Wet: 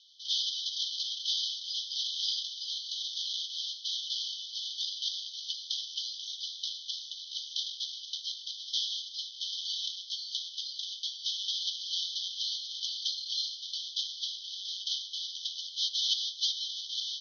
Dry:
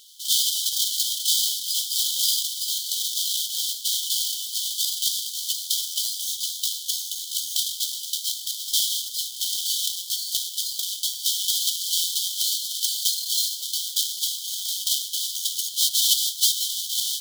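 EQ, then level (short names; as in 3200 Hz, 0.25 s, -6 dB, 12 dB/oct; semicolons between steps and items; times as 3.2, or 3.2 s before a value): steep high-pass 3000 Hz; brick-wall FIR low-pass 6400 Hz; air absorption 210 m; 0.0 dB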